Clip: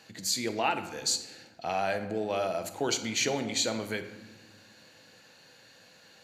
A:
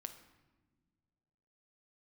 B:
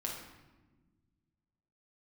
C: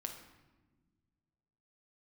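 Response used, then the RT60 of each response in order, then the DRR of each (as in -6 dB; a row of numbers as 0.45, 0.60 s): A; not exponential, 1.3 s, 1.3 s; 7.5, -2.0, 3.5 dB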